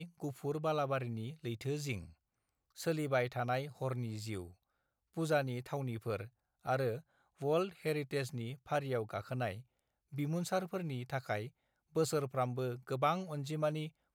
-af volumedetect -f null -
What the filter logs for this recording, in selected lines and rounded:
mean_volume: -37.9 dB
max_volume: -19.4 dB